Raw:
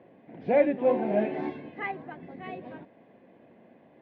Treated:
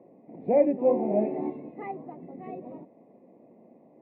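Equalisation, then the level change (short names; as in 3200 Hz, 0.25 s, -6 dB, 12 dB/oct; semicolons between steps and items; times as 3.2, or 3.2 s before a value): running mean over 28 samples; HPF 170 Hz 12 dB/oct; air absorption 87 m; +3.0 dB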